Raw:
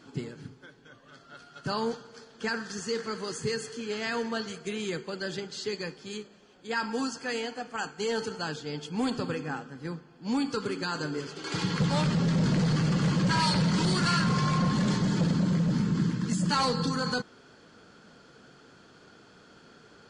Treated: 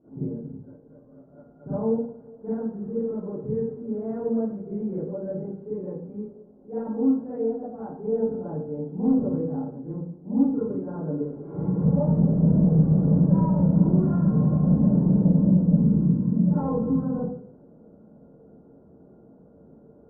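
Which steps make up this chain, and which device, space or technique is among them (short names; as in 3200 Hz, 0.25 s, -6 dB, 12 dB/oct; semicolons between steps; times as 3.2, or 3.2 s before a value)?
next room (LPF 660 Hz 24 dB/oct; reverb RT60 0.55 s, pre-delay 36 ms, DRR -11 dB); gain -6.5 dB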